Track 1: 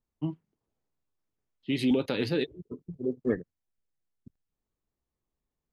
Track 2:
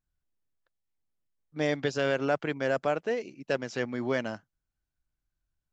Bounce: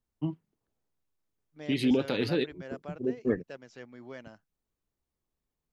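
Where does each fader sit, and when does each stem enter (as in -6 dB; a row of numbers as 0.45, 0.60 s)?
0.0, -15.5 dB; 0.00, 0.00 s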